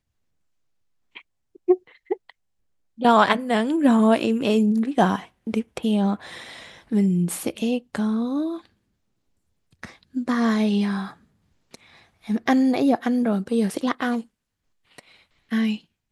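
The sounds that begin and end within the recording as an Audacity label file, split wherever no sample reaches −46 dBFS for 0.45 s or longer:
1.150000	2.300000	sound
2.980000	8.660000	sound
9.730000	11.140000	sound
11.730000	14.250000	sound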